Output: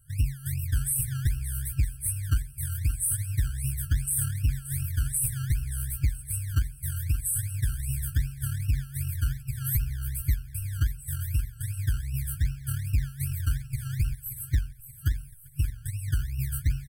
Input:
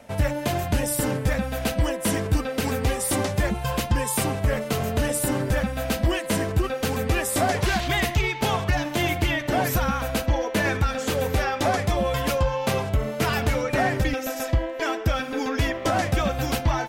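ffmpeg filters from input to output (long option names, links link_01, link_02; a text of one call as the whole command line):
ffmpeg -i in.wav -filter_complex "[0:a]afftfilt=real='re*(1-between(b*sr/4096,150,7900))':imag='im*(1-between(b*sr/4096,150,7900))':win_size=4096:overlap=0.75,asoftclip=type=tanh:threshold=-15dB,acrossover=split=740[link_01][link_02];[link_01]acrusher=samples=23:mix=1:aa=0.000001:lfo=1:lforange=13.8:lforate=2.6[link_03];[link_02]asplit=2[link_04][link_05];[link_05]adelay=15,volume=-4dB[link_06];[link_04][link_06]amix=inputs=2:normalize=0[link_07];[link_03][link_07]amix=inputs=2:normalize=0,aecho=1:1:577|1154|1731|2308:0.237|0.102|0.0438|0.0189" out.wav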